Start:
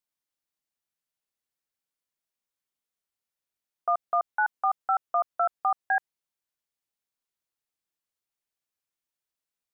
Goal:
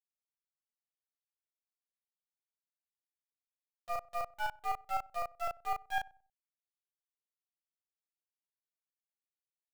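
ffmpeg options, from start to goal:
ffmpeg -i in.wav -filter_complex "[0:a]highpass=frequency=280:poles=1,agate=range=-18dB:threshold=-24dB:ratio=16:detection=peak,acrossover=split=560|760[link_01][link_02][link_03];[link_03]acrusher=bits=4:dc=4:mix=0:aa=0.000001[link_04];[link_01][link_02][link_04]amix=inputs=3:normalize=0,asplit=2[link_05][link_06];[link_06]adelay=35,volume=-3dB[link_07];[link_05][link_07]amix=inputs=2:normalize=0,asplit=2[link_08][link_09];[link_09]adelay=94,lowpass=frequency=940:poles=1,volume=-21dB,asplit=2[link_10][link_11];[link_11]adelay=94,lowpass=frequency=940:poles=1,volume=0.34,asplit=2[link_12][link_13];[link_13]adelay=94,lowpass=frequency=940:poles=1,volume=0.34[link_14];[link_08][link_10][link_12][link_14]amix=inputs=4:normalize=0,volume=-7dB" out.wav

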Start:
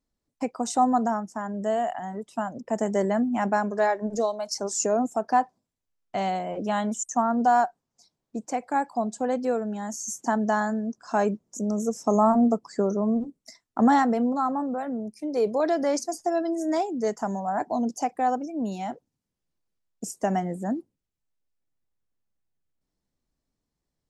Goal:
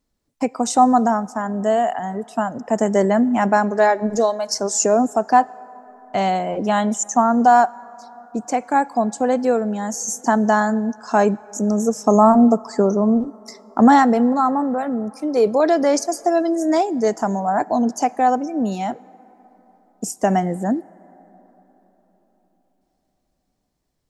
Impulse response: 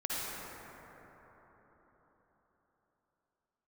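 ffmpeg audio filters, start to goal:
-filter_complex "[0:a]asplit=2[link_01][link_02];[1:a]atrim=start_sample=2205,lowshelf=frequency=220:gain=-12[link_03];[link_02][link_03]afir=irnorm=-1:irlink=0,volume=-26.5dB[link_04];[link_01][link_04]amix=inputs=2:normalize=0,volume=7.5dB"

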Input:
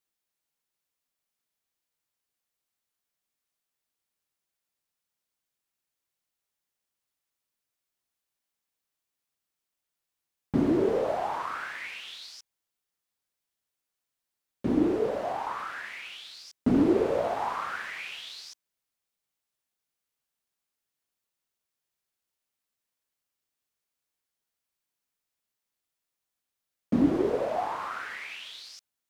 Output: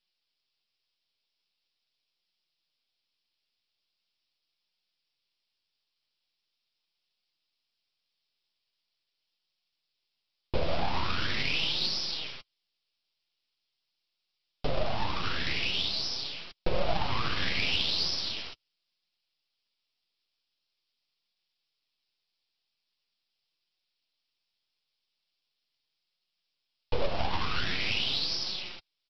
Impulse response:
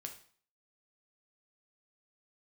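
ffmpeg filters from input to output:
-af "acompressor=threshold=-30dB:ratio=2,aresample=11025,aeval=exprs='abs(val(0))':channel_layout=same,aresample=44100,aexciter=amount=2.7:drive=8.6:freq=2500,flanger=delay=5.4:depth=6.5:regen=-26:speed=0.42:shape=sinusoidal,volume=6.5dB"

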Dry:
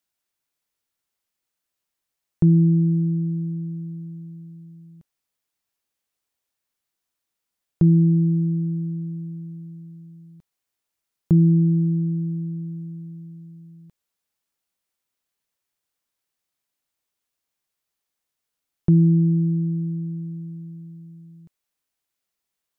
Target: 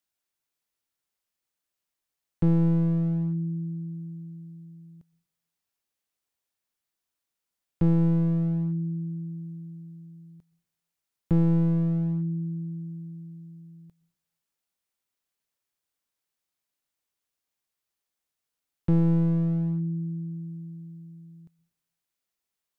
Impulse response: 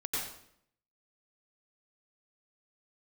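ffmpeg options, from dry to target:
-filter_complex "[0:a]aeval=exprs='clip(val(0),-1,0.0841)':channel_layout=same,asplit=2[link_01][link_02];[1:a]atrim=start_sample=2205,adelay=23[link_03];[link_02][link_03]afir=irnorm=-1:irlink=0,volume=-26dB[link_04];[link_01][link_04]amix=inputs=2:normalize=0,volume=-3.5dB"

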